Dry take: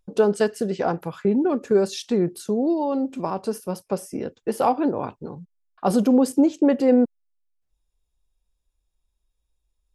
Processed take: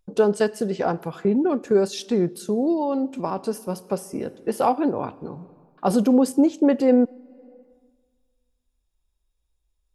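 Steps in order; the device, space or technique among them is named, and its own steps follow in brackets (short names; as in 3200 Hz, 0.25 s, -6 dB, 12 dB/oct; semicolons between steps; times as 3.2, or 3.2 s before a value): compressed reverb return (on a send at -13 dB: reverb RT60 1.5 s, pre-delay 34 ms + compressor 6:1, threshold -29 dBFS, peak gain reduction 16 dB)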